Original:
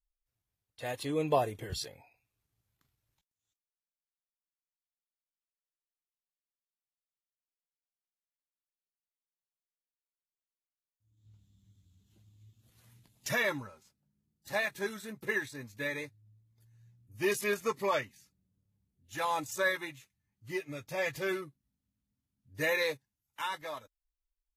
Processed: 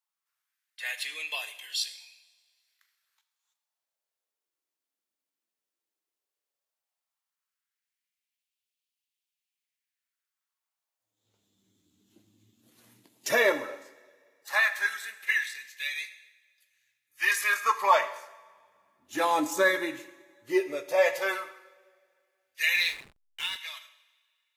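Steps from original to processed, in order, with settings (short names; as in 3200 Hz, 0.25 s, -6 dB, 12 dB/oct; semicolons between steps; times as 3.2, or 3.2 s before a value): LFO high-pass sine 0.14 Hz 270–2900 Hz; two-slope reverb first 0.91 s, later 2.5 s, from -19 dB, DRR 9 dB; 22.74–23.56 backlash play -41 dBFS; gain +5 dB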